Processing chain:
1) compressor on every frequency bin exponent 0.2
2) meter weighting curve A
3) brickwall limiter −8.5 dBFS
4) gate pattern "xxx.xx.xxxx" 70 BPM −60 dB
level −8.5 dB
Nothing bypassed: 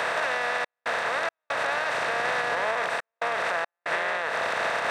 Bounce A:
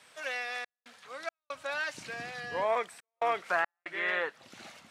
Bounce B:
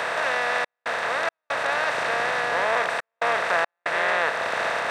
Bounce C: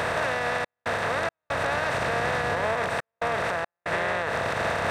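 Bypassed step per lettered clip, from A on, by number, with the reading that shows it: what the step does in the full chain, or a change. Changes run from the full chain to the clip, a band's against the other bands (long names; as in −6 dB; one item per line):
1, 250 Hz band +3.0 dB
3, average gain reduction 2.5 dB
2, 125 Hz band +15.0 dB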